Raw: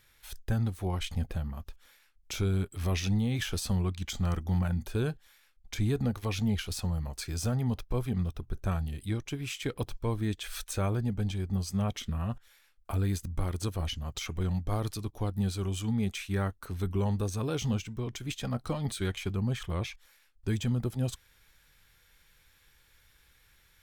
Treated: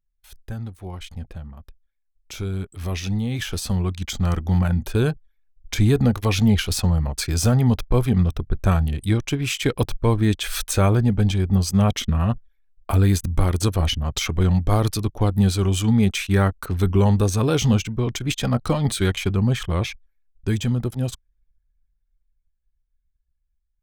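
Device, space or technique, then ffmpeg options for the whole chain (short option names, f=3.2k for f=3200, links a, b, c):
voice memo with heavy noise removal: -af "anlmdn=0.00631,dynaudnorm=f=750:g=11:m=15dB,volume=-2.5dB"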